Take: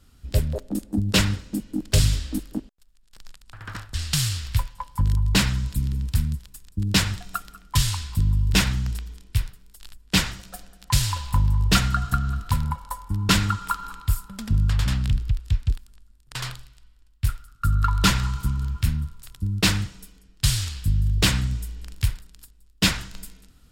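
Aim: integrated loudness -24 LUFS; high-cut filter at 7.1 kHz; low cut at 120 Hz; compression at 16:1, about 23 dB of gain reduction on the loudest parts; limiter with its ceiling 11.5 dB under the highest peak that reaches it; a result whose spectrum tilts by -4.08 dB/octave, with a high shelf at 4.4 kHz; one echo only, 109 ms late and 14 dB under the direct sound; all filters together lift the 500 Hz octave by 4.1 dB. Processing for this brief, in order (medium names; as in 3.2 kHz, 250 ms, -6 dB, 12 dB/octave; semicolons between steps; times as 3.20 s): high-pass 120 Hz; low-pass 7.1 kHz; peaking EQ 500 Hz +5 dB; treble shelf 4.4 kHz +8.5 dB; compression 16:1, threshold -36 dBFS; peak limiter -29 dBFS; delay 109 ms -14 dB; trim +19 dB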